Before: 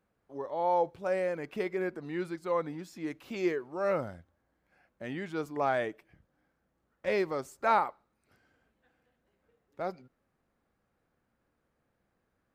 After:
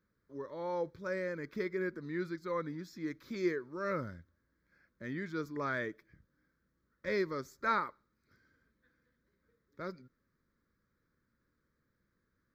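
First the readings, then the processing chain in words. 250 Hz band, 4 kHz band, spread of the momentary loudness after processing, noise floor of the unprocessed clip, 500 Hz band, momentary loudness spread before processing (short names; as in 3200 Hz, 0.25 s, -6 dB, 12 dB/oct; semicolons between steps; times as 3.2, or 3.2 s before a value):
-2.0 dB, -3.5 dB, 11 LU, -79 dBFS, -6.0 dB, 11 LU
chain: fixed phaser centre 2800 Hz, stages 6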